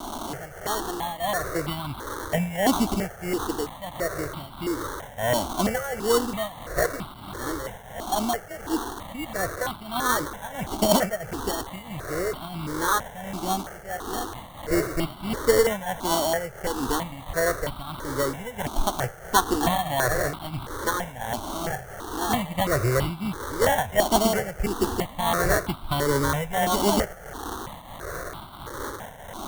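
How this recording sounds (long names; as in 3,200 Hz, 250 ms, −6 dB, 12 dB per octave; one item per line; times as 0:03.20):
a quantiser's noise floor 6 bits, dither triangular
tremolo triangle 1.5 Hz, depth 80%
aliases and images of a low sample rate 2,500 Hz, jitter 0%
notches that jump at a steady rate 3 Hz 490–1,800 Hz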